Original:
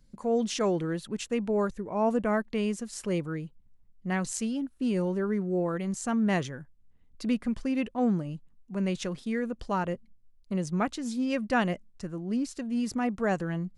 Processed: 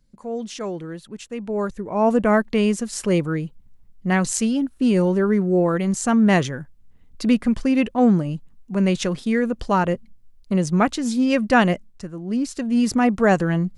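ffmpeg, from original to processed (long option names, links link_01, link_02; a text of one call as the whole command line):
ffmpeg -i in.wav -af "volume=19dB,afade=type=in:start_time=1.34:duration=0.99:silence=0.251189,afade=type=out:start_time=11.71:duration=0.4:silence=0.398107,afade=type=in:start_time=12.11:duration=0.73:silence=0.354813" out.wav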